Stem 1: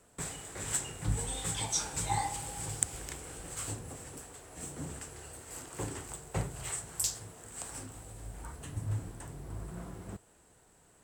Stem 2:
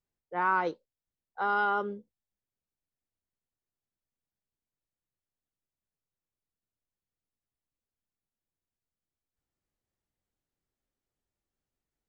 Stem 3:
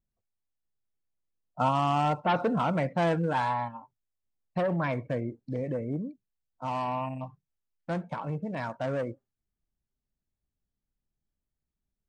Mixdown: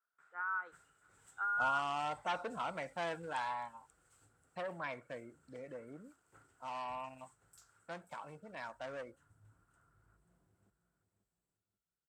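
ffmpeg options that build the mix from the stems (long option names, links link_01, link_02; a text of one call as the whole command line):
ffmpeg -i stem1.wav -i stem2.wav -i stem3.wav -filter_complex "[0:a]volume=-10.5dB,asplit=2[link_01][link_02];[link_02]volume=-21dB[link_03];[1:a]volume=2.5dB[link_04];[2:a]highpass=frequency=1200:poles=1,dynaudnorm=framelen=210:gausssize=5:maxgain=9dB,volume=-15dB[link_05];[link_01][link_04]amix=inputs=2:normalize=0,bandpass=frequency=1400:width_type=q:width=11:csg=0,alimiter=level_in=6dB:limit=-24dB:level=0:latency=1:release=107,volume=-6dB,volume=0dB[link_06];[link_03]aecho=0:1:536|1072|1608|2144|2680:1|0.33|0.109|0.0359|0.0119[link_07];[link_05][link_06][link_07]amix=inputs=3:normalize=0" out.wav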